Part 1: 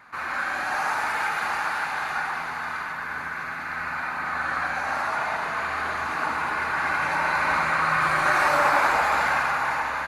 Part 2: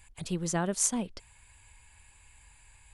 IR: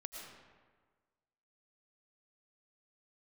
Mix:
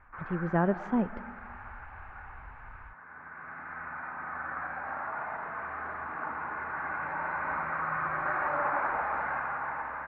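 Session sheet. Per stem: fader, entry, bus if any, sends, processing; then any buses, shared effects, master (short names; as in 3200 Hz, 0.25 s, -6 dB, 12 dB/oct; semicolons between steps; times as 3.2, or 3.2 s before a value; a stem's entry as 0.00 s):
-9.0 dB, 0.00 s, no send, auto duck -10 dB, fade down 1.00 s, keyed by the second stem
-3.5 dB, 0.00 s, send -10 dB, AGC gain up to 12.5 dB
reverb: on, RT60 1.5 s, pre-delay 70 ms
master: LPF 1800 Hz 24 dB/oct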